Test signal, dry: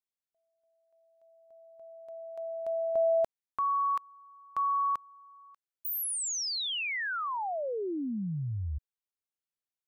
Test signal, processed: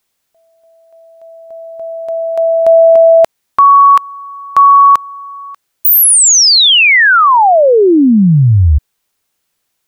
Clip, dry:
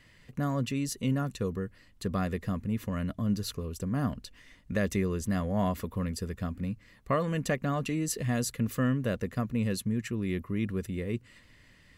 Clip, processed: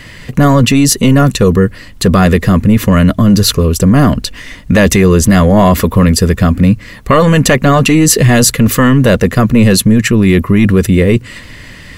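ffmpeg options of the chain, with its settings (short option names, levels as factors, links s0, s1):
-af "apsyclip=26.6,volume=0.794"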